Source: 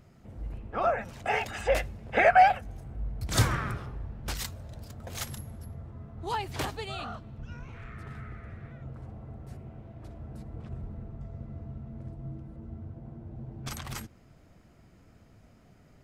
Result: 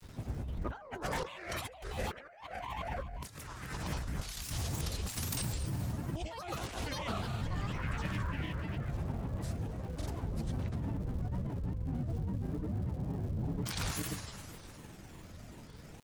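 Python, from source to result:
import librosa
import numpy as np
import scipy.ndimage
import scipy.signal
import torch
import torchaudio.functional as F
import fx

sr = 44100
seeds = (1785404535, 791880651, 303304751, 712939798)

p1 = fx.high_shelf(x, sr, hz=4400.0, db=11.0)
p2 = p1 + fx.echo_filtered(p1, sr, ms=67, feedback_pct=70, hz=2000.0, wet_db=-19.5, dry=0)
p3 = fx.rev_plate(p2, sr, seeds[0], rt60_s=2.6, hf_ratio=0.85, predelay_ms=0, drr_db=10.0)
p4 = fx.granulator(p3, sr, seeds[1], grain_ms=100.0, per_s=20.0, spray_ms=100.0, spread_st=7)
p5 = fx.high_shelf(p4, sr, hz=11000.0, db=-5.0)
p6 = fx.dmg_crackle(p5, sr, seeds[2], per_s=220.0, level_db=-56.0)
p7 = fx.over_compress(p6, sr, threshold_db=-41.0, ratio=-1.0)
p8 = fx.record_warp(p7, sr, rpm=45.0, depth_cents=160.0)
y = p8 * 10.0 ** (1.5 / 20.0)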